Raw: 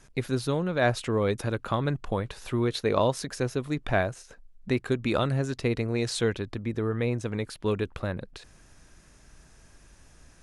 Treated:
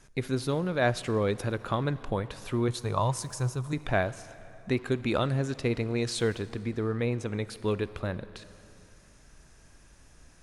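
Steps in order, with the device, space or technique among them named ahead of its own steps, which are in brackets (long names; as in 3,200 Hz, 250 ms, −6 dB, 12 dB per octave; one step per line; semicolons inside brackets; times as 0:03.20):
0:02.68–0:03.73: octave-band graphic EQ 125/250/500/1,000/2,000/4,000/8,000 Hz +8/−10/−8/+6/−10/−4/+6 dB
saturated reverb return (on a send at −12 dB: convolution reverb RT60 2.4 s, pre-delay 29 ms + soft clipping −29.5 dBFS, distortion −9 dB)
on the sum: level −1.5 dB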